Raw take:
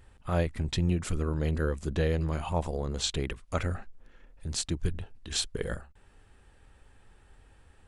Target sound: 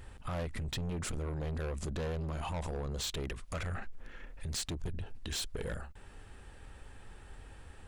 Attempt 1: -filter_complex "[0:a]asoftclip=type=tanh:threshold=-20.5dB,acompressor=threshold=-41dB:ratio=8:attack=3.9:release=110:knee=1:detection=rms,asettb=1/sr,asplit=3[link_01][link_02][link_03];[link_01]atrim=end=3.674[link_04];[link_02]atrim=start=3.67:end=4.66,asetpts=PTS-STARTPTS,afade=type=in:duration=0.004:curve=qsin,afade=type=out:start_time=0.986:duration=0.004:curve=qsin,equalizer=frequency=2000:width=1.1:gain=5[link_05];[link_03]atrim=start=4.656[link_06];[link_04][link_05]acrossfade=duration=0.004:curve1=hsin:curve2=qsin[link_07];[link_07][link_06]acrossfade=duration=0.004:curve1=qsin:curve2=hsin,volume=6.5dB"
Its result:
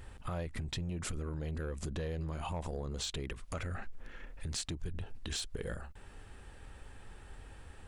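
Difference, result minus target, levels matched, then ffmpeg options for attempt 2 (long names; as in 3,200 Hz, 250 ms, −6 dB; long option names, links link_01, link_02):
soft clipping: distortion −11 dB
-filter_complex "[0:a]asoftclip=type=tanh:threshold=-31.5dB,acompressor=threshold=-41dB:ratio=8:attack=3.9:release=110:knee=1:detection=rms,asettb=1/sr,asplit=3[link_01][link_02][link_03];[link_01]atrim=end=3.674[link_04];[link_02]atrim=start=3.67:end=4.66,asetpts=PTS-STARTPTS,afade=type=in:duration=0.004:curve=qsin,afade=type=out:start_time=0.986:duration=0.004:curve=qsin,equalizer=frequency=2000:width=1.1:gain=5[link_05];[link_03]atrim=start=4.656[link_06];[link_04][link_05]acrossfade=duration=0.004:curve1=hsin:curve2=qsin[link_07];[link_07][link_06]acrossfade=duration=0.004:curve1=qsin:curve2=hsin,volume=6.5dB"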